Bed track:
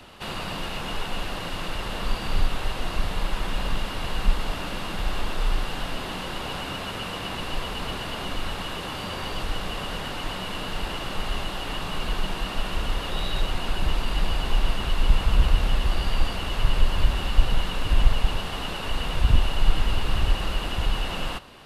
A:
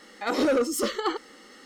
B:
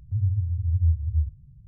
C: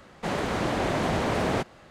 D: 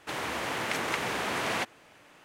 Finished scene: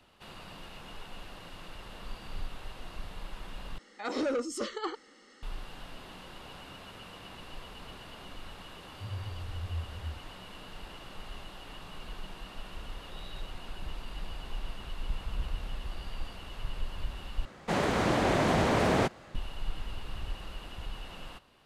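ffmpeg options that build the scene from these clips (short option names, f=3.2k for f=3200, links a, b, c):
-filter_complex "[0:a]volume=-15.5dB[a];[1:a]lowpass=f=8.9k:w=0.5412,lowpass=f=8.9k:w=1.3066[b];[a]asplit=3[c][d][e];[c]atrim=end=3.784[f];[b]atrim=end=1.65,asetpts=PTS-STARTPTS,volume=-8dB[g];[d]atrim=start=5.426:end=17.454[h];[3:a]atrim=end=1.9[i];[e]atrim=start=19.346[j];[2:a]atrim=end=1.67,asetpts=PTS-STARTPTS,volume=-15dB,afade=t=in:d=0.004:c=hsin,afade=t=out:st=1.666:d=0.004:c=hsin,adelay=8890[k];[f][g]acrossfade=d=0.004:c1=hsin:c2=hsin[l];[l][h]acrossfade=d=0.004:c1=hsin:c2=hsin[m];[m][i]acrossfade=d=0.004:c1=hsin:c2=hsin[n];[n][j]acrossfade=d=0.004:c1=hsin:c2=hsin[o];[o][k]amix=inputs=2:normalize=0"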